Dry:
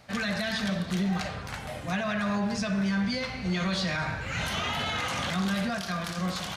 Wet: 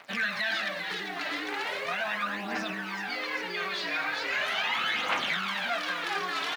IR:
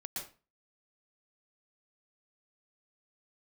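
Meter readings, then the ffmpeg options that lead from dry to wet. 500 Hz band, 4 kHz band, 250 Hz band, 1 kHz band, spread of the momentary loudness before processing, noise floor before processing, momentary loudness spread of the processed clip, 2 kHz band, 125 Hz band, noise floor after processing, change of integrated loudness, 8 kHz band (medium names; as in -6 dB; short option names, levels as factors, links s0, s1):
-2.5 dB, +1.5 dB, -13.0 dB, +1.5 dB, 4 LU, -38 dBFS, 5 LU, +4.0 dB, -18.5 dB, -36 dBFS, -0.5 dB, -6.0 dB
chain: -filter_complex "[0:a]asplit=9[s0][s1][s2][s3][s4][s5][s6][s7][s8];[s1]adelay=398,afreqshift=110,volume=0.562[s9];[s2]adelay=796,afreqshift=220,volume=0.327[s10];[s3]adelay=1194,afreqshift=330,volume=0.188[s11];[s4]adelay=1592,afreqshift=440,volume=0.11[s12];[s5]adelay=1990,afreqshift=550,volume=0.0638[s13];[s6]adelay=2388,afreqshift=660,volume=0.0367[s14];[s7]adelay=2786,afreqshift=770,volume=0.0214[s15];[s8]adelay=3184,afreqshift=880,volume=0.0124[s16];[s0][s9][s10][s11][s12][s13][s14][s15][s16]amix=inputs=9:normalize=0,acompressor=threshold=0.0316:ratio=12,acrusher=bits=9:dc=4:mix=0:aa=0.000001,tiltshelf=f=690:g=-9.5,aphaser=in_gain=1:out_gain=1:delay=3.1:decay=0.56:speed=0.39:type=triangular,highpass=86,acrossover=split=160 3500:gain=0.0708 1 0.141[s17][s18][s19];[s17][s18][s19]amix=inputs=3:normalize=0"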